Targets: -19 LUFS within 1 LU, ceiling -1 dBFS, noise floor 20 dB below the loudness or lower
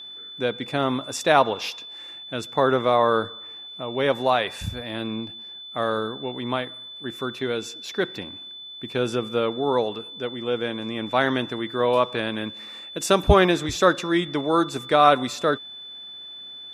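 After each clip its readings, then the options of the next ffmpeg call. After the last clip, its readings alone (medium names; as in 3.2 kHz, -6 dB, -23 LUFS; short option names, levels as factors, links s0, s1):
steady tone 3.5 kHz; tone level -37 dBFS; loudness -23.5 LUFS; peak level -1.0 dBFS; loudness target -19.0 LUFS
-> -af "bandreject=f=3500:w=30"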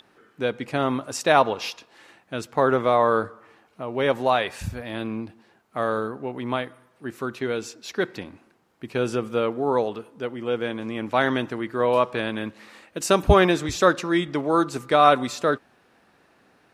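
steady tone not found; loudness -24.0 LUFS; peak level -1.5 dBFS; loudness target -19.0 LUFS
-> -af "volume=1.78,alimiter=limit=0.891:level=0:latency=1"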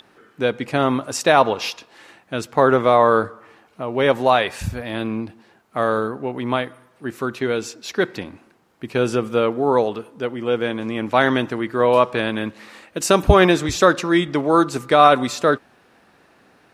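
loudness -19.5 LUFS; peak level -1.0 dBFS; noise floor -56 dBFS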